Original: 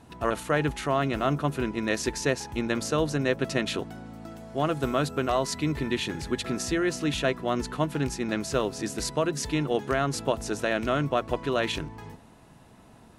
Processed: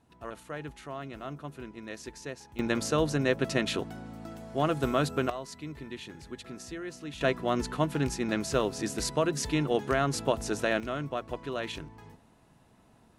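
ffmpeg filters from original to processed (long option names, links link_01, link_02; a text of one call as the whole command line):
ffmpeg -i in.wav -af "asetnsamples=nb_out_samples=441:pad=0,asendcmd='2.59 volume volume -1dB;5.3 volume volume -13dB;7.21 volume volume -1dB;10.8 volume volume -8dB',volume=-14dB" out.wav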